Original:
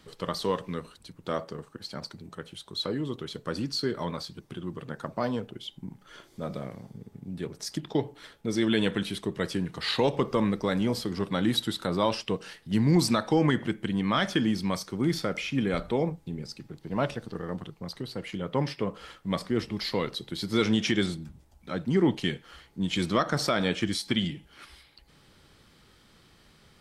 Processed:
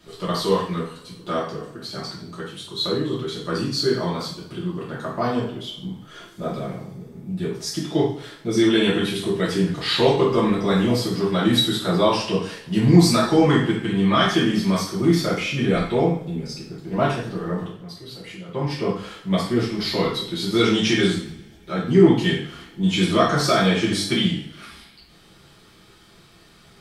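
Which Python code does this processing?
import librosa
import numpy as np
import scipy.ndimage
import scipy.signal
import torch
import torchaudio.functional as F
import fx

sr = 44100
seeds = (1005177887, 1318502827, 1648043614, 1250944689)

y = fx.level_steps(x, sr, step_db=15, at=(17.65, 18.7))
y = fx.rev_double_slope(y, sr, seeds[0], early_s=0.53, late_s=2.1, knee_db=-25, drr_db=-8.0)
y = y * librosa.db_to_amplitude(-1.0)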